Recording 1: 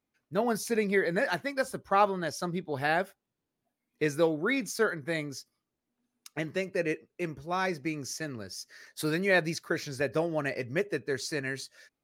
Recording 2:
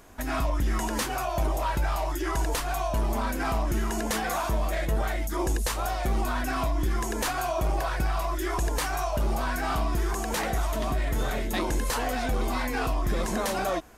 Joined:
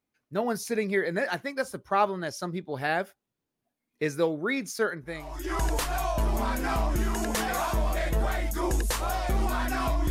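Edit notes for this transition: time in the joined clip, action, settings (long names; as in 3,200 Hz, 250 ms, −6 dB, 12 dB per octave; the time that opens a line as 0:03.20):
recording 1
0:05.27: continue with recording 2 from 0:02.03, crossfade 0.60 s quadratic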